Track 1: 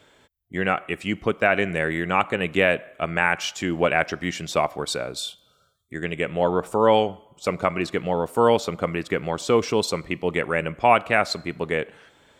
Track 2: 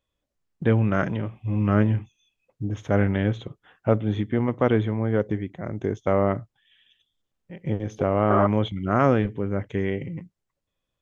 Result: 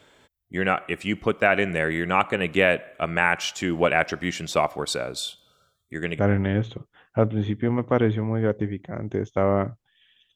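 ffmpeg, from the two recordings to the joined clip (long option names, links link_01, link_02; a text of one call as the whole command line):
ffmpeg -i cue0.wav -i cue1.wav -filter_complex "[0:a]apad=whole_dur=10.35,atrim=end=10.35,atrim=end=6.192[link_01];[1:a]atrim=start=2.888:end=7.05[link_02];[link_01][link_02]acrossfade=duration=0.004:curve1=hsin:curve2=hsin" out.wav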